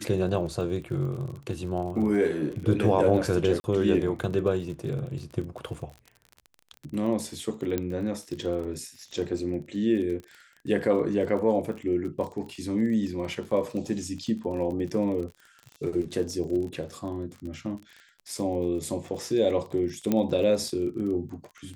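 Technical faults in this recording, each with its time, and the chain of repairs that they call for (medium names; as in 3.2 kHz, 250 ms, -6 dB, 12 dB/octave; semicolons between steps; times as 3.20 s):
crackle 32 per s -35 dBFS
3.60–3.64 s: dropout 40 ms
7.78 s: pop -14 dBFS
20.12 s: pop -12 dBFS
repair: de-click; interpolate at 3.60 s, 40 ms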